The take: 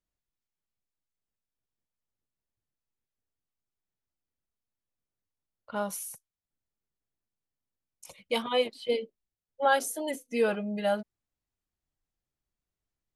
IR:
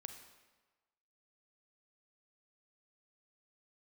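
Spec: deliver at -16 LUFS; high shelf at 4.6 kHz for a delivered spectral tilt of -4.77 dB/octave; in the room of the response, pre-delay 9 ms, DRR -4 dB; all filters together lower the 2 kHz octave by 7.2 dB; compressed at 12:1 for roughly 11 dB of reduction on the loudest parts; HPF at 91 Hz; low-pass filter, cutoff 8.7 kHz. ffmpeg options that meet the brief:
-filter_complex "[0:a]highpass=91,lowpass=8700,equalizer=f=2000:t=o:g=-9,highshelf=f=4600:g=-6,acompressor=threshold=0.0251:ratio=12,asplit=2[s0][s1];[1:a]atrim=start_sample=2205,adelay=9[s2];[s1][s2]afir=irnorm=-1:irlink=0,volume=2.66[s3];[s0][s3]amix=inputs=2:normalize=0,volume=7.5"

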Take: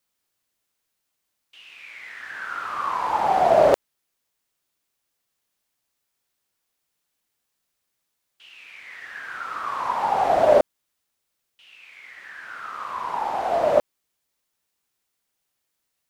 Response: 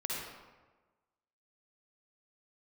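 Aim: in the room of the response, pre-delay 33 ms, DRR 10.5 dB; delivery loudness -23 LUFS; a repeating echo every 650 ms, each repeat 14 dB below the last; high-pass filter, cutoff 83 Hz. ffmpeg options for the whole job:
-filter_complex "[0:a]highpass=83,aecho=1:1:650|1300:0.2|0.0399,asplit=2[s0][s1];[1:a]atrim=start_sample=2205,adelay=33[s2];[s1][s2]afir=irnorm=-1:irlink=0,volume=0.2[s3];[s0][s3]amix=inputs=2:normalize=0"

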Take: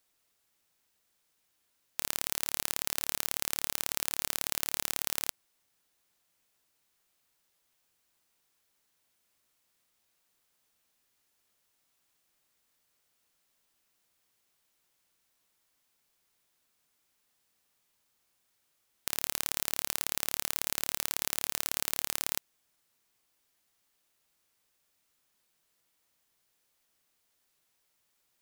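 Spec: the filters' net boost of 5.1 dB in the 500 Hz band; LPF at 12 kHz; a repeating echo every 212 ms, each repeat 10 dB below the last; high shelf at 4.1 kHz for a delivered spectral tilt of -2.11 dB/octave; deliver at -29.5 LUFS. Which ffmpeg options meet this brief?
-af "lowpass=12000,equalizer=f=500:t=o:g=6.5,highshelf=f=4100:g=-7.5,aecho=1:1:212|424|636|848:0.316|0.101|0.0324|0.0104,volume=2.66"

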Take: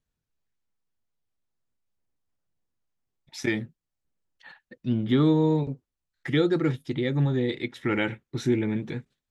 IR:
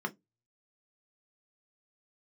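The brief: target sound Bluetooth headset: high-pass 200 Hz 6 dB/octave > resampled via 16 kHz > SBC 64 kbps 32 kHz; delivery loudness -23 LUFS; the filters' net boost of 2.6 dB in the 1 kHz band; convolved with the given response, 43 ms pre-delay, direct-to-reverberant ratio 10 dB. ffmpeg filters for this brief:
-filter_complex "[0:a]equalizer=f=1000:t=o:g=3.5,asplit=2[s0][s1];[1:a]atrim=start_sample=2205,adelay=43[s2];[s1][s2]afir=irnorm=-1:irlink=0,volume=0.188[s3];[s0][s3]amix=inputs=2:normalize=0,highpass=f=200:p=1,aresample=16000,aresample=44100,volume=1.68" -ar 32000 -c:a sbc -b:a 64k

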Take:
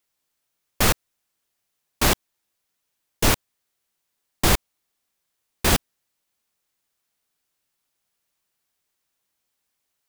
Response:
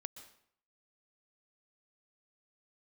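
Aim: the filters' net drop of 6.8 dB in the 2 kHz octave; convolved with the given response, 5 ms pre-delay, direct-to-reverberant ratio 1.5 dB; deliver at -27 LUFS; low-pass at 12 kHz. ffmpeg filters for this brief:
-filter_complex "[0:a]lowpass=12000,equalizer=f=2000:t=o:g=-9,asplit=2[s0][s1];[1:a]atrim=start_sample=2205,adelay=5[s2];[s1][s2]afir=irnorm=-1:irlink=0,volume=1.33[s3];[s0][s3]amix=inputs=2:normalize=0,volume=0.596"

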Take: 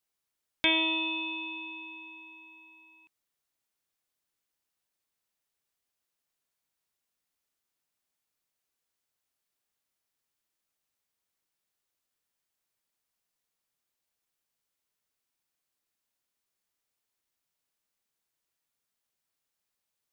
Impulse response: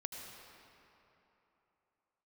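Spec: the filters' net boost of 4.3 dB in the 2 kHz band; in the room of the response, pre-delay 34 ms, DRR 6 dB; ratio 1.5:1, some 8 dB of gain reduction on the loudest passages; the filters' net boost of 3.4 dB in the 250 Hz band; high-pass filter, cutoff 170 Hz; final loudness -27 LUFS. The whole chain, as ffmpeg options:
-filter_complex "[0:a]highpass=170,equalizer=f=250:t=o:g=5.5,equalizer=f=2000:t=o:g=6,acompressor=threshold=0.0112:ratio=1.5,asplit=2[s0][s1];[1:a]atrim=start_sample=2205,adelay=34[s2];[s1][s2]afir=irnorm=-1:irlink=0,volume=0.562[s3];[s0][s3]amix=inputs=2:normalize=0,volume=2.24"

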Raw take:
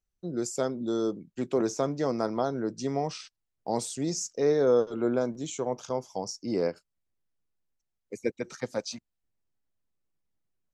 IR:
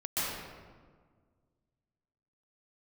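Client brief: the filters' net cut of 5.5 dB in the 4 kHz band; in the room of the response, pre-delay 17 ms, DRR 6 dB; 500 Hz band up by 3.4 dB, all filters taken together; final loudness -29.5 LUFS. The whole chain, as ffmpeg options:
-filter_complex "[0:a]equalizer=f=500:t=o:g=4,equalizer=f=4000:t=o:g=-8,asplit=2[s0][s1];[1:a]atrim=start_sample=2205,adelay=17[s2];[s1][s2]afir=irnorm=-1:irlink=0,volume=0.2[s3];[s0][s3]amix=inputs=2:normalize=0,volume=0.75"

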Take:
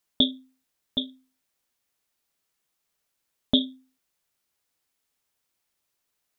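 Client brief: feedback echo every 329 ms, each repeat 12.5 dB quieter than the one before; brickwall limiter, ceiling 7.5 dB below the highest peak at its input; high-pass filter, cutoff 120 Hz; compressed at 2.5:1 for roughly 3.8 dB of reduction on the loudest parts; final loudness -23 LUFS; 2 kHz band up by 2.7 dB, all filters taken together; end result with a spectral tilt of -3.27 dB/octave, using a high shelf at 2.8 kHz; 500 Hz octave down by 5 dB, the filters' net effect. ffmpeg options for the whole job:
-af "highpass=120,equalizer=f=500:t=o:g=-6.5,equalizer=f=2000:t=o:g=5.5,highshelf=f=2800:g=-3.5,acompressor=threshold=0.0631:ratio=2.5,alimiter=limit=0.133:level=0:latency=1,aecho=1:1:329|658|987:0.237|0.0569|0.0137,volume=5.31"

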